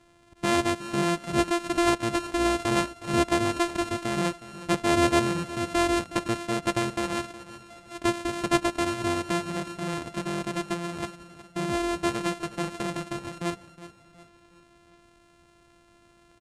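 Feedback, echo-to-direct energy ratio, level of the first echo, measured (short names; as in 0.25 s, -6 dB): 44%, -14.0 dB, -15.0 dB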